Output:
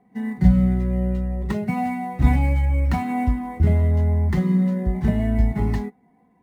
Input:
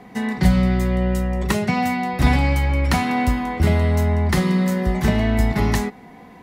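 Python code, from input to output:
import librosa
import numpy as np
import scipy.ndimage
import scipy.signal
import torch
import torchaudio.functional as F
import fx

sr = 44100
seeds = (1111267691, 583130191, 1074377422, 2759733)

y = fx.sample_hold(x, sr, seeds[0], rate_hz=11000.0, jitter_pct=20)
y = fx.spectral_expand(y, sr, expansion=1.5)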